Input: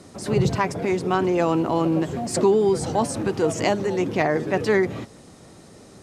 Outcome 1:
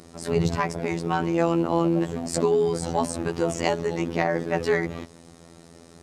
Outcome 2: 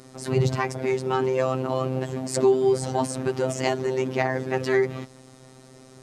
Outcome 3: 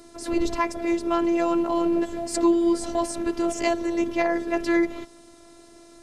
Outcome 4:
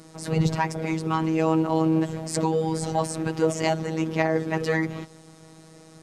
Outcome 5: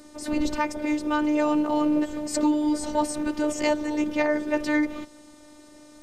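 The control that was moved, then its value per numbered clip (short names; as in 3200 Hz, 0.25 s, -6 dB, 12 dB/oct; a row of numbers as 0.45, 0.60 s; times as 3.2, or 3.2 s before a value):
robotiser, frequency: 84, 130, 340, 160, 300 Hz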